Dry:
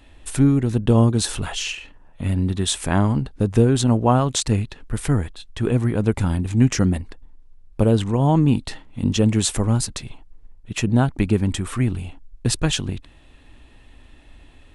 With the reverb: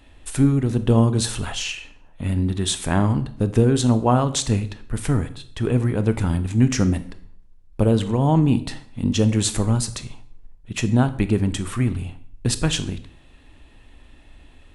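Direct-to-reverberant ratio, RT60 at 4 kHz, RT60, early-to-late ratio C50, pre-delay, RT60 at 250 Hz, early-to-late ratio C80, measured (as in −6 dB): 11.5 dB, 0.50 s, 0.60 s, 15.0 dB, 21 ms, 0.65 s, 18.0 dB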